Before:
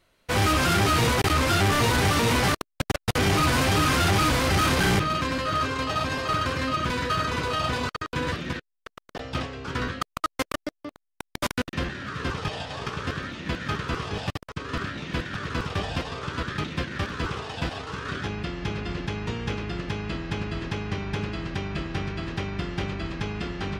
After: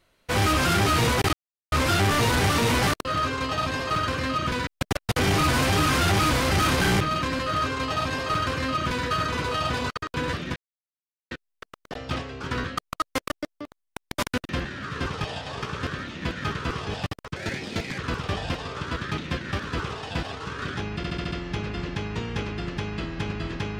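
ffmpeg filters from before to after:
-filter_complex "[0:a]asplit=12[a][b][c][d][e][f][g][h][i][j][k][l];[a]atrim=end=1.33,asetpts=PTS-STARTPTS,afade=t=out:st=1.326:d=0.004:c=hsin,apad=pad_dur=0.39[m];[b]atrim=start=1.33:end=2.662,asetpts=PTS-STARTPTS,afade=t=in:d=0.004:c=hsin[n];[c]atrim=start=5.428:end=7.052[o];[d]atrim=start=2.658:end=8.55,asetpts=PTS-STARTPTS,afade=t=out:st=5.888:d=0.004:c=hsin,apad=pad_dur=0.75[p];[e]atrim=start=8.55:end=14.604,asetpts=PTS-STARTPTS,afade=t=in:d=0.004:c=hsin[q];[f]atrim=start=14.6:end=15.45,asetpts=PTS-STARTPTS,asetrate=59976,aresample=44100,atrim=end_sample=27562,asetpts=PTS-STARTPTS[r];[g]atrim=start=15.446:end=18.502[s];[h]atrim=start=18.428:end=18.502[t];[i]atrim=start=18.428:end=18.502[u];[j]atrim=start=18.428:end=18.502[v];[k]atrim=start=18.428:end=18.502[w];[l]atrim=start=18.428[x];[m][n]concat=n=2:v=0:a=1[y];[y][o]acrossfade=d=0.004:c1=hsin:c2=hsin[z];[p][q]concat=n=2:v=0:a=1[aa];[z][aa]acrossfade=d=0.004:c1=hsin:c2=hsin[ab];[ab][r]acrossfade=d=0.004:c1=hsin:c2=hsin[ac];[ac][s]acrossfade=d=0.004:c1=hsin:c2=hsin[ad];[ad][t]acrossfade=d=0.004:c1=hsin:c2=hsin[ae];[ae][u]acrossfade=d=0.004:c1=hsin:c2=hsin[af];[af][v]acrossfade=d=0.004:c1=hsin:c2=hsin[ag];[ag][w]acrossfade=d=0.004:c1=hsin:c2=hsin[ah];[ah][x]acrossfade=d=0.004:c1=hsin:c2=hsin"

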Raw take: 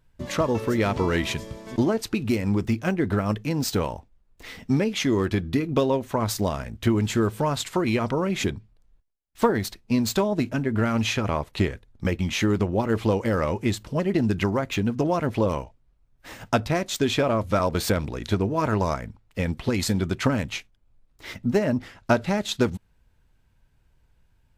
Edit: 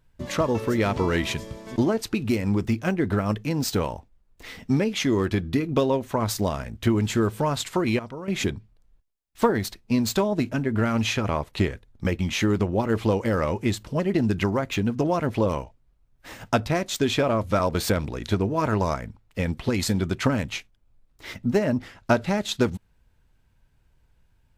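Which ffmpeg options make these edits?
-filter_complex "[0:a]asplit=3[a][b][c];[a]atrim=end=7.992[d];[b]atrim=start=7.988:end=8.282,asetpts=PTS-STARTPTS,volume=-11.5dB[e];[c]atrim=start=8.278[f];[d][e]acrossfade=d=0.004:c1=hsin:c2=hsin[g];[g][f]acrossfade=d=0.004:c1=hsin:c2=hsin"

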